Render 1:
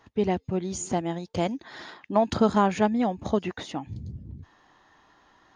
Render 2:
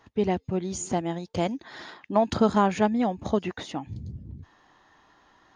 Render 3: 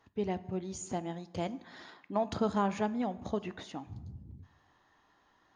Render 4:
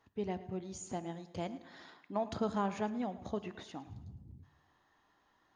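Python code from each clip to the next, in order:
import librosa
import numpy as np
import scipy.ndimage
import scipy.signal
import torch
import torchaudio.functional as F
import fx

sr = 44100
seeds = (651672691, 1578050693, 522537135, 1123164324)

y1 = x
y2 = fx.rev_plate(y1, sr, seeds[0], rt60_s=1.0, hf_ratio=0.65, predelay_ms=0, drr_db=14.0)
y2 = y2 * librosa.db_to_amplitude(-9.0)
y3 = fx.echo_feedback(y2, sr, ms=108, feedback_pct=45, wet_db=-17)
y3 = y3 * librosa.db_to_amplitude(-4.0)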